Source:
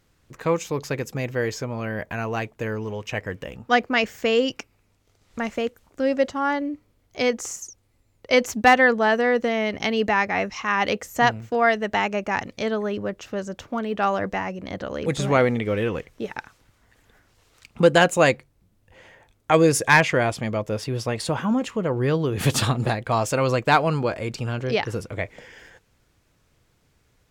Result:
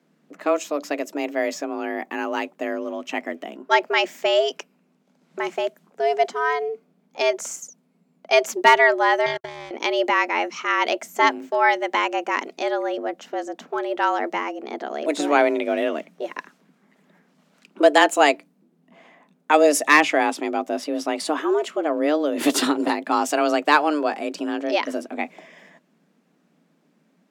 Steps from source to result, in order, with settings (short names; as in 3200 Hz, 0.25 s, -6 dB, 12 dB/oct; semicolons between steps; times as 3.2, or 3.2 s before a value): frequency shift +150 Hz; 9.26–9.71 power-law curve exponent 3; mismatched tape noise reduction decoder only; gain +1 dB